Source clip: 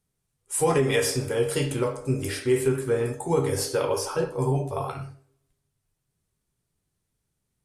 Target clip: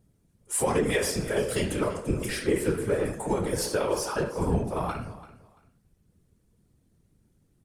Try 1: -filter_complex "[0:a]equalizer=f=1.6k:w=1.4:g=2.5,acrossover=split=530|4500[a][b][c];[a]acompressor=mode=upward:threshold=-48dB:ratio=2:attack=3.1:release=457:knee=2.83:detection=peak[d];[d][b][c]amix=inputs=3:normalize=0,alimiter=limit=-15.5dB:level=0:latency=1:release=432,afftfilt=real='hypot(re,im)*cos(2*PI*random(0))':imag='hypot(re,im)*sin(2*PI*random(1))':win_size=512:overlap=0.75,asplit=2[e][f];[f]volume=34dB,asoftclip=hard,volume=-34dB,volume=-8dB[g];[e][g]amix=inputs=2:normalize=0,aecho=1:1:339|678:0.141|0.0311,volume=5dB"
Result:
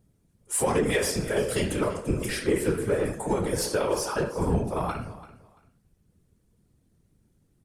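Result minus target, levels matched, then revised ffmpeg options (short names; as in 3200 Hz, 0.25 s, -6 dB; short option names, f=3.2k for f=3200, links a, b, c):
overloaded stage: distortion -4 dB
-filter_complex "[0:a]equalizer=f=1.6k:w=1.4:g=2.5,acrossover=split=530|4500[a][b][c];[a]acompressor=mode=upward:threshold=-48dB:ratio=2:attack=3.1:release=457:knee=2.83:detection=peak[d];[d][b][c]amix=inputs=3:normalize=0,alimiter=limit=-15.5dB:level=0:latency=1:release=432,afftfilt=real='hypot(re,im)*cos(2*PI*random(0))':imag='hypot(re,im)*sin(2*PI*random(1))':win_size=512:overlap=0.75,asplit=2[e][f];[f]volume=42dB,asoftclip=hard,volume=-42dB,volume=-8dB[g];[e][g]amix=inputs=2:normalize=0,aecho=1:1:339|678:0.141|0.0311,volume=5dB"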